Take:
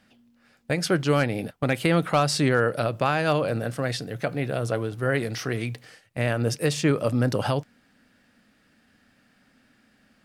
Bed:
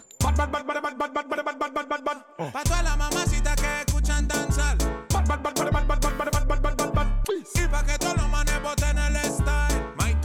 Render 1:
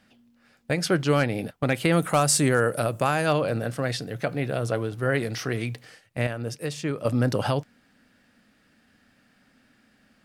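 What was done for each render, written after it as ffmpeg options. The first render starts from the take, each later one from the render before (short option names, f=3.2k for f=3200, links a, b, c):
-filter_complex "[0:a]asettb=1/sr,asplit=3[a][b][c];[a]atrim=end=1.924[d];[b]atrim=start=1.92:end=3.26,asetpts=PTS-STARTPTS,afade=t=in:d=0.004:c=qsin,afade=t=out:st=1.336:d=0.004:c=qsin,highshelf=f=6k:t=q:w=1.5:g=9.5[e];[c]atrim=start=3.256[f];[d][e]acrossfade=d=0.004:c1=hsin:c2=qsin[g];[g][f]acrossfade=d=0.004:c1=qsin:c2=hsin,asplit=3[h][i][j];[h]atrim=end=6.272[k];[i]atrim=start=6.268:end=7.052,asetpts=PTS-STARTPTS,volume=-7dB[l];[j]atrim=start=7.048[m];[k][l]acrossfade=d=0.004:c1=hsin:c2=hsin[n];[n][m]acrossfade=d=0.004:c1=hsin:c2=hsin"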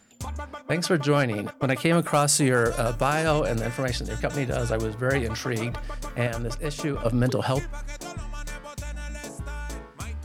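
-filter_complex "[1:a]volume=-11.5dB[a];[0:a][a]amix=inputs=2:normalize=0"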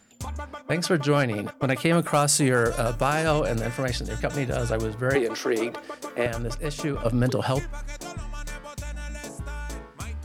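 -filter_complex "[0:a]asettb=1/sr,asplit=3[a][b][c];[a]atrim=end=5.154[d];[b]atrim=start=5.15:end=6.26,asetpts=PTS-STARTPTS,afade=t=in:d=0.004:c=qsin,afade=t=out:st=1.106:d=0.004:c=qsin,highpass=f=350:t=q:w=2.4[e];[c]atrim=start=6.256[f];[d][e]acrossfade=d=0.004:c1=hsin:c2=qsin[g];[g][f]acrossfade=d=0.004:c1=qsin:c2=hsin"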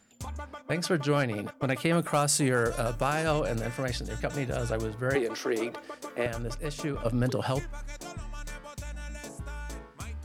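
-af "volume=-4.5dB"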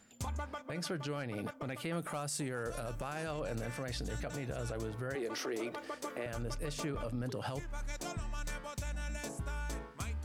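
-af "acompressor=threshold=-33dB:ratio=5,alimiter=level_in=5dB:limit=-24dB:level=0:latency=1:release=18,volume=-5dB"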